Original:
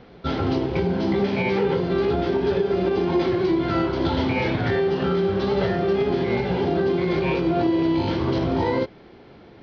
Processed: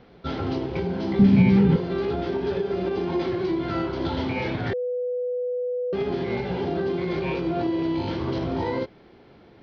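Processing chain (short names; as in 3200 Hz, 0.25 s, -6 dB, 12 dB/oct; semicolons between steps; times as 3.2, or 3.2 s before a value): 1.19–1.76 resonant low shelf 310 Hz +13 dB, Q 1.5; 4.73–5.93 bleep 495 Hz -19.5 dBFS; gain -4.5 dB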